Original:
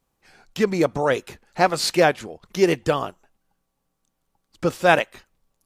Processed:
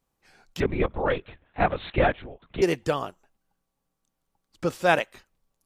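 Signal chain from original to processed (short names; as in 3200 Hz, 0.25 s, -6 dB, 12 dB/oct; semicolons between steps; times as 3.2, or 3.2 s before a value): 0.6–2.62 LPC vocoder at 8 kHz whisper; gain -4.5 dB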